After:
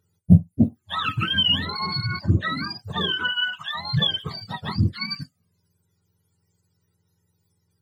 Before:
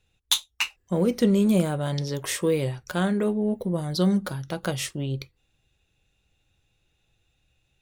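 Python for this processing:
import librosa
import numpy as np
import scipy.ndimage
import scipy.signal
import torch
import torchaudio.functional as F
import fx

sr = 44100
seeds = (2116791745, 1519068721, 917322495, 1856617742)

y = fx.octave_mirror(x, sr, pivot_hz=790.0)
y = fx.env_flanger(y, sr, rest_ms=2.1, full_db=-19.0)
y = F.gain(torch.from_numpy(y), 4.5).numpy()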